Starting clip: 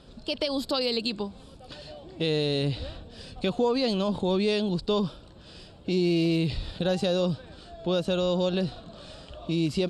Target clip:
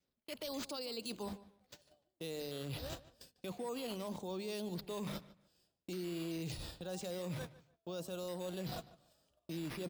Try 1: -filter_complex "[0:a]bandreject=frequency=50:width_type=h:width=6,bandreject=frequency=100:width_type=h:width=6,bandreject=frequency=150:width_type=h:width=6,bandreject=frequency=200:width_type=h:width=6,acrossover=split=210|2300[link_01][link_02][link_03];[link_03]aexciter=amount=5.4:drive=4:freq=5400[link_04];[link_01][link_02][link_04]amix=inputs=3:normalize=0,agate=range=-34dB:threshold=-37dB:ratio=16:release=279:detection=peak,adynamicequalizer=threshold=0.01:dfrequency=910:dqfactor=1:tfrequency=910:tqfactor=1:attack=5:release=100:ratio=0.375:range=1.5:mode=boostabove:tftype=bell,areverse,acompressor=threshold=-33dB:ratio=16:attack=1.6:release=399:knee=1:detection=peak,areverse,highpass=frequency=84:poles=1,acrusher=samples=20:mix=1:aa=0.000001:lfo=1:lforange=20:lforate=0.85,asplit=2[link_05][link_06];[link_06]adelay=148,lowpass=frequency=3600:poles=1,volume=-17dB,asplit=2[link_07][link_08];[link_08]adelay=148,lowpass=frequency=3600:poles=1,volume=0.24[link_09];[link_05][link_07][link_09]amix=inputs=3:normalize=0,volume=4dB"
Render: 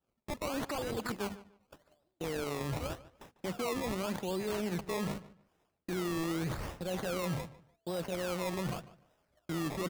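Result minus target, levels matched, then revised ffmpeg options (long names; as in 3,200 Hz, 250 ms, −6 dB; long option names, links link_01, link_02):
downward compressor: peak gain reduction −6.5 dB; sample-and-hold swept by an LFO: distortion +9 dB
-filter_complex "[0:a]bandreject=frequency=50:width_type=h:width=6,bandreject=frequency=100:width_type=h:width=6,bandreject=frequency=150:width_type=h:width=6,bandreject=frequency=200:width_type=h:width=6,acrossover=split=210|2300[link_01][link_02][link_03];[link_03]aexciter=amount=5.4:drive=4:freq=5400[link_04];[link_01][link_02][link_04]amix=inputs=3:normalize=0,agate=range=-34dB:threshold=-37dB:ratio=16:release=279:detection=peak,adynamicequalizer=threshold=0.01:dfrequency=910:dqfactor=1:tfrequency=910:tqfactor=1:attack=5:release=100:ratio=0.375:range=1.5:mode=boostabove:tftype=bell,areverse,acompressor=threshold=-40dB:ratio=16:attack=1.6:release=399:knee=1:detection=peak,areverse,highpass=frequency=84:poles=1,acrusher=samples=4:mix=1:aa=0.000001:lfo=1:lforange=4:lforate=0.85,asplit=2[link_05][link_06];[link_06]adelay=148,lowpass=frequency=3600:poles=1,volume=-17dB,asplit=2[link_07][link_08];[link_08]adelay=148,lowpass=frequency=3600:poles=1,volume=0.24[link_09];[link_05][link_07][link_09]amix=inputs=3:normalize=0,volume=4dB"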